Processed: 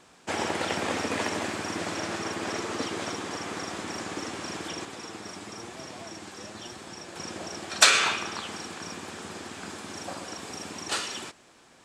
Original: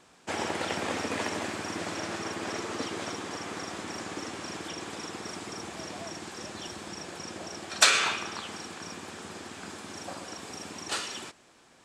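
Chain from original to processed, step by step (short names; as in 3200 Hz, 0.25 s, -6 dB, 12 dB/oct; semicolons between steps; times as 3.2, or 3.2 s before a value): 4.85–7.16 flange 1 Hz, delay 7.3 ms, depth 3.1 ms, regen +61%; gain +2.5 dB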